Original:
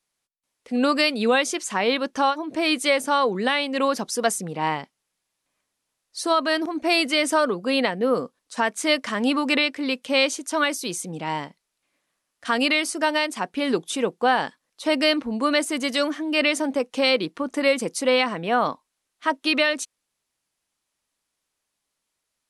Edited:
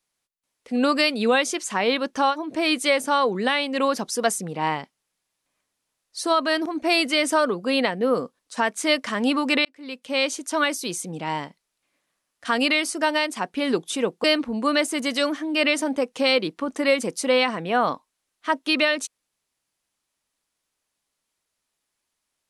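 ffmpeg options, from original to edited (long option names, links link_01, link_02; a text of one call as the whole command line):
ffmpeg -i in.wav -filter_complex "[0:a]asplit=3[link_01][link_02][link_03];[link_01]atrim=end=9.65,asetpts=PTS-STARTPTS,afade=type=out:start_time=9.646:duration=0.004:curve=hsin[link_04];[link_02]atrim=start=9.65:end=14.242,asetpts=PTS-STARTPTS,afade=type=in:duration=0.77[link_05];[link_03]atrim=start=15.018[link_06];[link_04][link_05]concat=n=2:v=0:a=1[link_07];[link_07][link_06]acrossfade=duration=0.004:curve1=hsin:curve2=hsin" out.wav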